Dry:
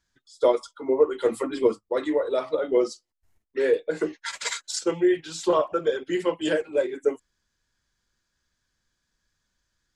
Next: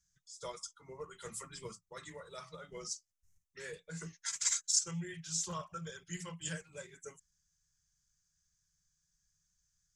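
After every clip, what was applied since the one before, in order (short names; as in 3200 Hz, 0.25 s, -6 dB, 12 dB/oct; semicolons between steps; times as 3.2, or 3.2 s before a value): EQ curve 120 Hz 0 dB, 170 Hz +6 dB, 260 Hz -29 dB, 390 Hz -23 dB, 720 Hz -20 dB, 1200 Hz -9 dB, 2900 Hz -8 dB, 4200 Hz -6 dB, 6100 Hz +10 dB, 11000 Hz +1 dB; gain -5 dB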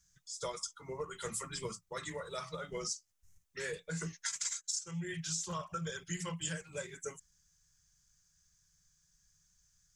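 compressor 10:1, threshold -42 dBFS, peak gain reduction 17.5 dB; gain +7.5 dB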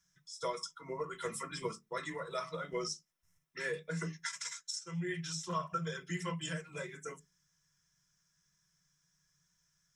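reverb RT60 0.15 s, pre-delay 3 ms, DRR 4.5 dB; gain -4 dB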